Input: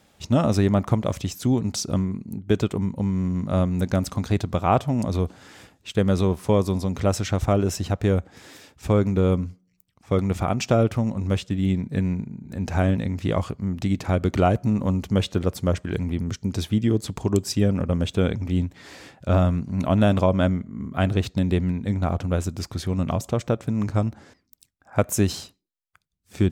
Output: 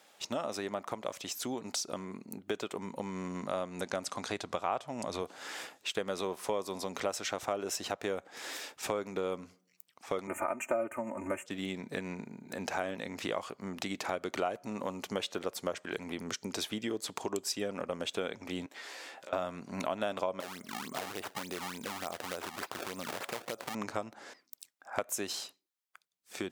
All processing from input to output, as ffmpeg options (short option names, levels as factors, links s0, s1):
-filter_complex "[0:a]asettb=1/sr,asplit=3[s0][s1][s2];[s0]atrim=end=3.614[s3];[s1]atrim=start=3.61:end=5.22,asetpts=PTS-STARTPTS,afade=t=in:d=0.004:c=qsin,afade=t=out:st=1.606:d=0.004:c=qsin,lowpass=f=11000:w=0.5412,lowpass=f=11000:w=1.3066,asubboost=boost=3:cutoff=170[s4];[s2]atrim=start=5.216[s5];[s3][s4]acrossfade=d=0.004:c1=hsin:c2=qsin[s6];[s6][s5]acrossfade=d=0.004:c1=qsin:c2=hsin,asettb=1/sr,asplit=3[s7][s8][s9];[s7]atrim=end=10.274[s10];[s8]atrim=start=10.27:end=11.46,asetpts=PTS-STARTPTS,afade=t=in:d=0.004:c=qsin,afade=t=out:st=1.186:d=0.004:c=qsin,asuperstop=centerf=4300:order=8:qfactor=0.9,aecho=1:1:3.3:0.99,atrim=end_sample=52479[s11];[s9]atrim=start=11.456[s12];[s10][s11]acrossfade=d=0.004:c1=hsin:c2=qsin[s13];[s13][s12]acrossfade=d=0.004:c1=qsin:c2=hsin,asettb=1/sr,asplit=3[s14][s15][s16];[s14]atrim=end=18.664[s17];[s15]atrim=start=18.66:end=19.33,asetpts=PTS-STARTPTS,afade=t=in:d=0.004:c=qsin,afade=t=out:st=0.666:d=0.004:c=qsin,highpass=260,acompressor=threshold=0.00447:ratio=12:attack=3.2:release=140:knee=1:detection=peak,asplit=2[s18][s19];[s19]adelay=15,volume=0.422[s20];[s18][s20]amix=inputs=2:normalize=0,atrim=end_sample=29547[s21];[s16]atrim=start=19.326[s22];[s17][s21]acrossfade=d=0.004:c1=hsin:c2=qsin[s23];[s23][s22]acrossfade=d=0.004:c1=qsin:c2=hsin,asettb=1/sr,asplit=3[s24][s25][s26];[s24]atrim=end=20.404[s27];[s25]atrim=start=20.4:end=23.75,asetpts=PTS-STARTPTS,afade=t=in:d=0.004:c=qsin,afade=t=out:st=3.346:d=0.004:c=qsin,acrusher=samples=25:mix=1:aa=0.000001:lfo=1:lforange=40:lforate=3.4,acompressor=threshold=0.0355:ratio=5:attack=3.2:release=140:knee=1:detection=peak[s28];[s26]atrim=start=23.746[s29];[s27][s28]acrossfade=d=0.004:c1=hsin:c2=qsin[s30];[s30][s29]acrossfade=d=0.004:c1=qsin:c2=hsin,dynaudnorm=f=750:g=7:m=3.76,highpass=510,acompressor=threshold=0.0178:ratio=3"